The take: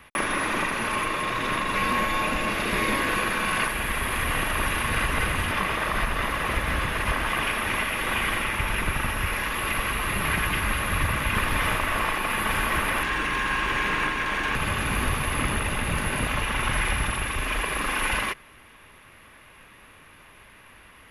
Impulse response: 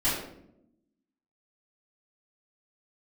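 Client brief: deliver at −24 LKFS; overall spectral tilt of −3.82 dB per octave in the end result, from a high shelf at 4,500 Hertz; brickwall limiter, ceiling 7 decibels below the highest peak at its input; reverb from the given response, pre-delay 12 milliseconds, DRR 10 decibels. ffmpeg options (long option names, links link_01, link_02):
-filter_complex "[0:a]highshelf=frequency=4500:gain=4,alimiter=limit=-18dB:level=0:latency=1,asplit=2[link_01][link_02];[1:a]atrim=start_sample=2205,adelay=12[link_03];[link_02][link_03]afir=irnorm=-1:irlink=0,volume=-21dB[link_04];[link_01][link_04]amix=inputs=2:normalize=0,volume=2.5dB"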